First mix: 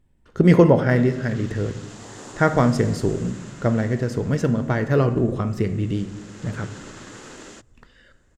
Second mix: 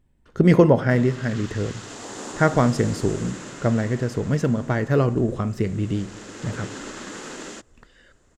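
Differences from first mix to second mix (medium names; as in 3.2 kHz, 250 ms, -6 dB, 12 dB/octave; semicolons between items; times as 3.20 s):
speech: send -7.5 dB; background +5.0 dB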